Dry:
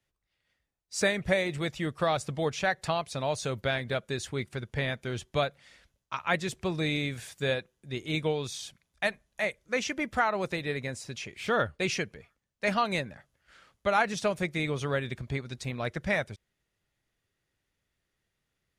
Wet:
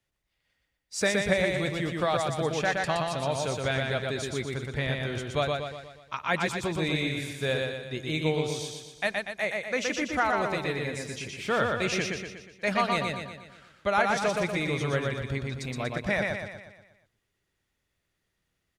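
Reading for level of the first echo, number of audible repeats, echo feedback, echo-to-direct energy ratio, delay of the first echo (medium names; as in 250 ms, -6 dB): -3.0 dB, 6, 50%, -2.0 dB, 120 ms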